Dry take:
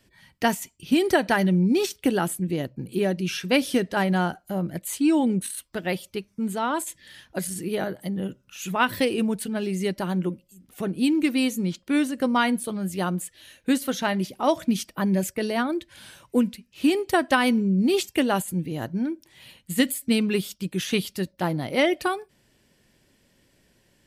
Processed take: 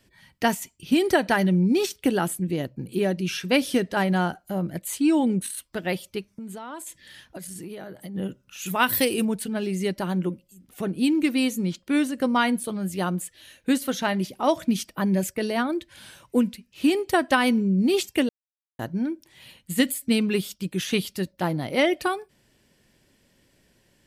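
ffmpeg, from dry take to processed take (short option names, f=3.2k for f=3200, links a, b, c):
-filter_complex "[0:a]asplit=3[a][b][c];[a]afade=t=out:st=6.3:d=0.02[d];[b]acompressor=threshold=-33dB:ratio=16:attack=3.2:release=140:knee=1:detection=peak,afade=t=in:st=6.3:d=0.02,afade=t=out:st=8.14:d=0.02[e];[c]afade=t=in:st=8.14:d=0.02[f];[d][e][f]amix=inputs=3:normalize=0,asettb=1/sr,asplit=3[g][h][i];[g]atrim=end=8.664[j];[h]atrim=start=8.66:end=9.25,asetpts=PTS-STARTPTS,afade=t=in:d=0.004:c=qsin,afade=t=out:st=0.586:d=0.004:c=qsin,aemphasis=mode=production:type=50fm[k];[i]atrim=start=9.246[l];[j][k]acrossfade=d=0.004:c1=hsin:c2=qsin[m];[m][l]acrossfade=d=0.004:c1=qsin:c2=hsin,asplit=3[n][o][p];[n]atrim=end=18.29,asetpts=PTS-STARTPTS,afade=t=out:st=18.286:d=0.004:c=hsin[q];[o]atrim=start=18.29:end=18.79,asetpts=PTS-STARTPTS,volume=0[r];[p]atrim=start=18.79,asetpts=PTS-STARTPTS,afade=t=in:d=0.004:c=hsin[s];[q][r][s]concat=n=3:v=0:a=1"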